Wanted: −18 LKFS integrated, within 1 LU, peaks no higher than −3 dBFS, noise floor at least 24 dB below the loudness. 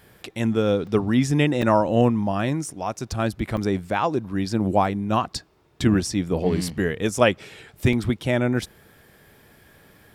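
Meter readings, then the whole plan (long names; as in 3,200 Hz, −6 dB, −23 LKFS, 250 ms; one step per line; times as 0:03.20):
number of dropouts 4; longest dropout 2.5 ms; integrated loudness −23.0 LKFS; sample peak −3.0 dBFS; target loudness −18.0 LKFS
→ repair the gap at 0:00.87/0:01.62/0:03.57/0:07.93, 2.5 ms
level +5 dB
brickwall limiter −3 dBFS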